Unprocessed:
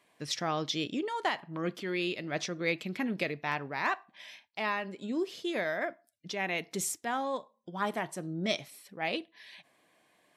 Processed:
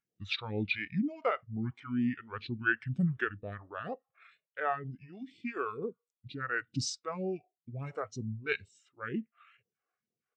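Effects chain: phaser stages 2, 2.1 Hz, lowest notch 210–2100 Hz; pitch shift -6.5 st; spectral expander 1.5:1

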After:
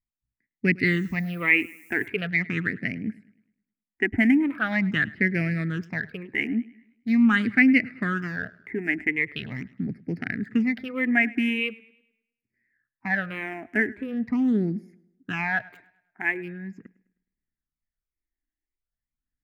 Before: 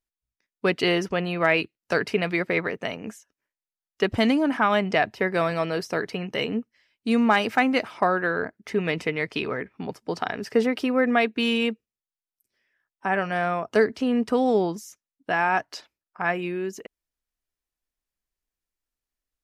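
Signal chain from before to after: Wiener smoothing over 15 samples; graphic EQ 125/250/500/1000/2000/4000/8000 Hz +6/+8/-9/-11/+12/-6/-6 dB; 0.85–2.06 added noise blue -55 dBFS; phaser stages 8, 0.42 Hz, lowest notch 150–1100 Hz; warbling echo 0.104 s, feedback 43%, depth 57 cents, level -22 dB

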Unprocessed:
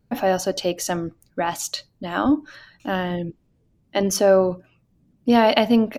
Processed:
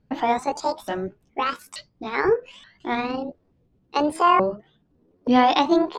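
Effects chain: repeated pitch sweeps +11.5 st, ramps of 0.879 s; LPF 4400 Hz 12 dB/oct

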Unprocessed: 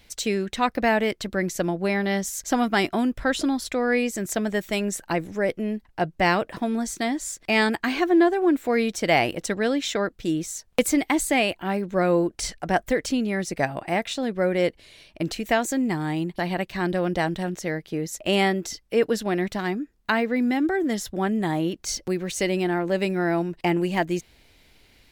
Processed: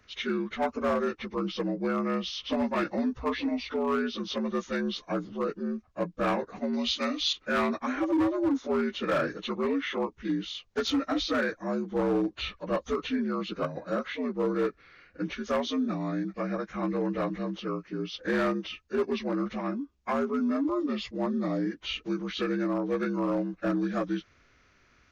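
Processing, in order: inharmonic rescaling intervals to 78%; overloaded stage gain 17.5 dB; 6.73–7.33 bell 6100 Hz +12.5 dB 2.3 oct; gain -4 dB

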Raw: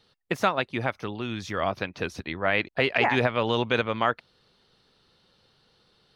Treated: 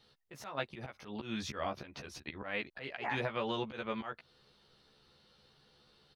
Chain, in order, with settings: compressor 6:1, threshold -28 dBFS, peak gain reduction 11 dB; auto swell 0.139 s; doubler 14 ms -3 dB; gain -4 dB

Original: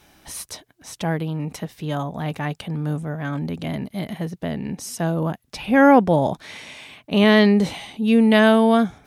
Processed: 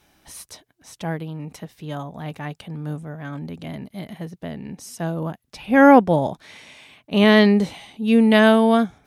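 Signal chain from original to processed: upward expander 1.5:1, over -26 dBFS; gain +2 dB

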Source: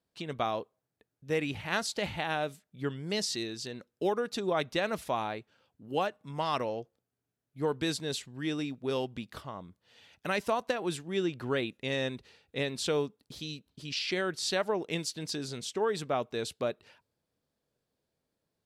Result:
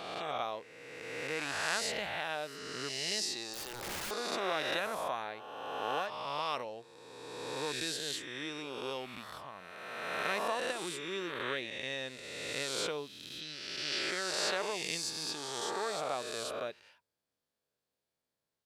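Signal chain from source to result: spectral swells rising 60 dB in 2.03 s; low shelf 450 Hz -10.5 dB; 3.53–4.11 wrapped overs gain 29 dB; gain -5.5 dB

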